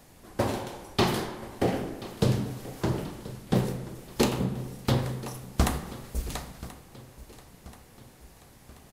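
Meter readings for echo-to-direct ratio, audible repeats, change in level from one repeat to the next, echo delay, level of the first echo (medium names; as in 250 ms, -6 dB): -16.5 dB, 3, -5.5 dB, 1032 ms, -18.0 dB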